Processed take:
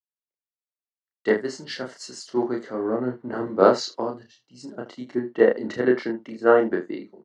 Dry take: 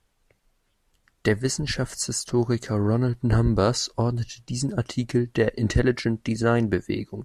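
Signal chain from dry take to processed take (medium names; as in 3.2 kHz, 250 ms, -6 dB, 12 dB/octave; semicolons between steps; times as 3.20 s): 1.58–3.77 s: companding laws mixed up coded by mu; Bessel high-pass 360 Hz, order 4; tape spacing loss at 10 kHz 30 dB; band-stop 2.5 kHz, Q 5.9; early reflections 32 ms -3.5 dB, 79 ms -13.5 dB; three bands expanded up and down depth 100%; trim +3 dB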